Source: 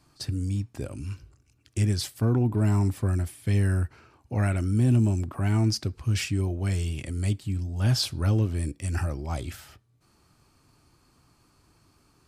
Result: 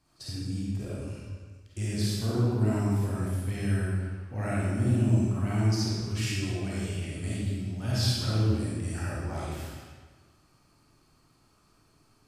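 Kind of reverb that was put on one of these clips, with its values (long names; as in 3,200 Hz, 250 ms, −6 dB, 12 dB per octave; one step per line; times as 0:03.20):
comb and all-pass reverb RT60 1.5 s, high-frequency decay 0.9×, pre-delay 10 ms, DRR −8 dB
level −9.5 dB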